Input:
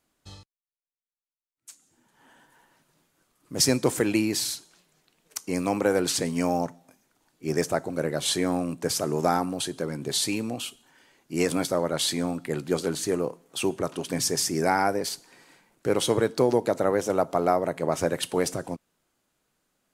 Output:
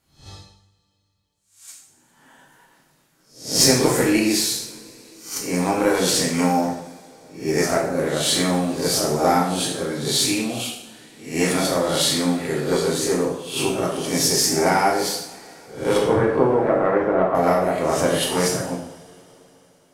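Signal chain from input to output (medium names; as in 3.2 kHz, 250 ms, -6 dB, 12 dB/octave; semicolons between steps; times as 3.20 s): reverse spectral sustain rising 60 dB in 0.44 s; 15.97–17.35 s: low-pass 2.1 kHz 24 dB/octave; Chebyshev shaper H 2 -16 dB, 6 -35 dB, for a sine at -6 dBFS; reverberation, pre-delay 3 ms, DRR -3 dB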